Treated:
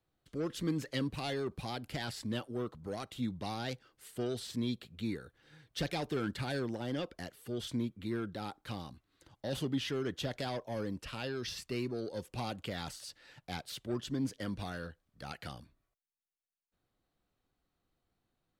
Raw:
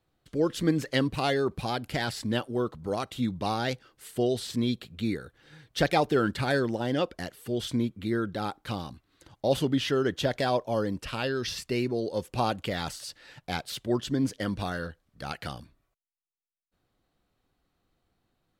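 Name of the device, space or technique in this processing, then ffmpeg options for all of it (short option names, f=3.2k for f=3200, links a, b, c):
one-band saturation: -filter_complex "[0:a]acrossover=split=320|2500[a][b][c];[b]asoftclip=type=tanh:threshold=-30dB[d];[a][d][c]amix=inputs=3:normalize=0,volume=-7dB"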